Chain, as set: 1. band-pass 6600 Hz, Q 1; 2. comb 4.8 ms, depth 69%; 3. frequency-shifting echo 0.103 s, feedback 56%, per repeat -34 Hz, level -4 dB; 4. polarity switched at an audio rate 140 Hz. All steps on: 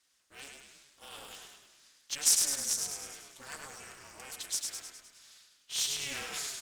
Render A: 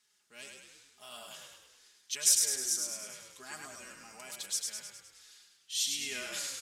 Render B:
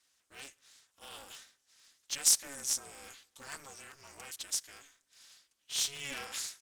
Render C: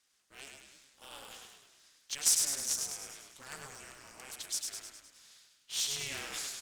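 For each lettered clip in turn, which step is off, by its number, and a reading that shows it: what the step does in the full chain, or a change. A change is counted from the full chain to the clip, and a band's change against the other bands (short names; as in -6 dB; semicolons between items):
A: 4, 1 kHz band -3.0 dB; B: 3, crest factor change +2.0 dB; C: 2, 125 Hz band +2.5 dB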